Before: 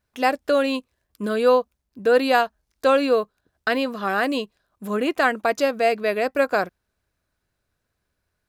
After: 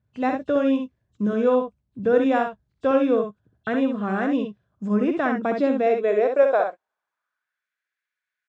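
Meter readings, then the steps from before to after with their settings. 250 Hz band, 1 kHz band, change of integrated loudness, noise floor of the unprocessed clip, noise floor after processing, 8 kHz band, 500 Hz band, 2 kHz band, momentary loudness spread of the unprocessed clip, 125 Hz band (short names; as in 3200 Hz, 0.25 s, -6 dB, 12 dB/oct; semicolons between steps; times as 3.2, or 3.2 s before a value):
+4.5 dB, -3.5 dB, -0.5 dB, -78 dBFS, under -85 dBFS, under -15 dB, -0.5 dB, -6.5 dB, 11 LU, n/a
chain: nonlinear frequency compression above 2600 Hz 1.5:1; high-pass sweep 120 Hz -> 1900 Hz, 5.03–7.69; RIAA curve playback; early reflections 63 ms -5.5 dB, 78 ms -17 dB; gain -6 dB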